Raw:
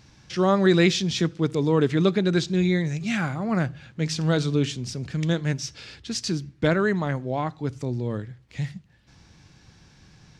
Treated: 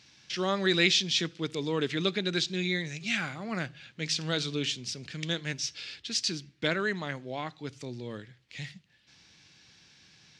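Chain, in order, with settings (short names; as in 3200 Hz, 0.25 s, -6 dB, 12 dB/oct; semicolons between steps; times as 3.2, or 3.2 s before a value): weighting filter D; gain -8.5 dB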